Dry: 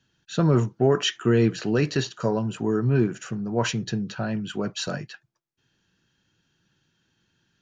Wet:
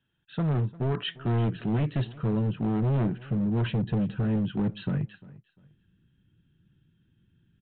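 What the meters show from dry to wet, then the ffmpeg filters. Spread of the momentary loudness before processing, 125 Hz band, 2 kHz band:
9 LU, -0.5 dB, -9.5 dB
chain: -af "asubboost=boost=9:cutoff=240,aresample=8000,asoftclip=type=hard:threshold=0.168,aresample=44100,aecho=1:1:349|698:0.0944|0.0264,volume=0.422"

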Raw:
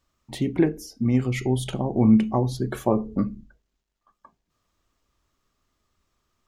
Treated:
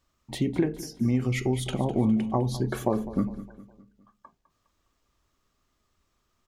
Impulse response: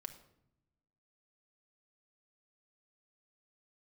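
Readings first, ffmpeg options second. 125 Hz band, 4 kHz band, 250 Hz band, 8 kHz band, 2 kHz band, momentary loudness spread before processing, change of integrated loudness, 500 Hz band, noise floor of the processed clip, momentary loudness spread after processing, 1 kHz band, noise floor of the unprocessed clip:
-3.0 dB, -0.5 dB, -4.5 dB, -0.5 dB, -1.0 dB, 10 LU, -4.0 dB, -3.0 dB, -75 dBFS, 8 LU, -2.5 dB, -79 dBFS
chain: -filter_complex "[0:a]acompressor=threshold=0.1:ratio=6,asplit=2[s0][s1];[s1]aecho=0:1:205|410|615|820:0.158|0.0745|0.035|0.0165[s2];[s0][s2]amix=inputs=2:normalize=0"

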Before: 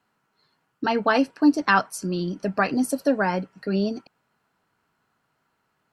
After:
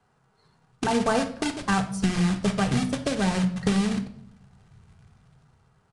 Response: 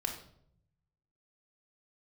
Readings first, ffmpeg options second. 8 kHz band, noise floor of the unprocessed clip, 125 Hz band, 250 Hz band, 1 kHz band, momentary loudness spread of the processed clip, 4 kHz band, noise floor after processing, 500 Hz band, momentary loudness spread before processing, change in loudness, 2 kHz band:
+2.5 dB, -73 dBFS, +6.0 dB, -1.0 dB, -4.5 dB, 5 LU, +2.5 dB, -66 dBFS, -3.5 dB, 9 LU, -2.0 dB, -5.5 dB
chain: -filter_complex "[0:a]acrossover=split=190|2600[s0][s1][s2];[s0]dynaudnorm=f=400:g=5:m=6.31[s3];[s3][s1][s2]amix=inputs=3:normalize=0,tiltshelf=f=860:g=8.5,acrusher=bits=3:mode=log:mix=0:aa=0.000001,acompressor=threshold=0.0891:ratio=10,equalizer=f=300:w=2.2:g=-14,asplit=2[s4][s5];[1:a]atrim=start_sample=2205[s6];[s5][s6]afir=irnorm=-1:irlink=0,volume=0.944[s7];[s4][s7]amix=inputs=2:normalize=0,aresample=22050,aresample=44100"

